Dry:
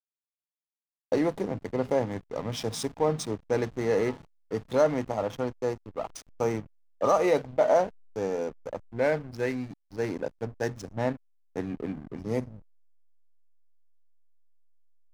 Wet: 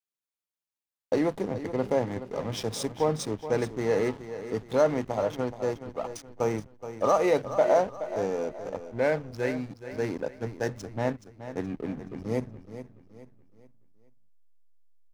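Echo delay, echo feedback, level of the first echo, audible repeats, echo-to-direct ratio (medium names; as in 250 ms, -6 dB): 424 ms, 38%, -12.0 dB, 3, -11.5 dB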